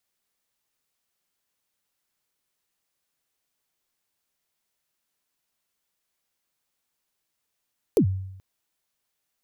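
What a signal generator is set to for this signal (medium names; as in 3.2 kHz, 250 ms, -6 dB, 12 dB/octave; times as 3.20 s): kick drum length 0.43 s, from 500 Hz, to 95 Hz, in 87 ms, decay 0.83 s, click on, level -13 dB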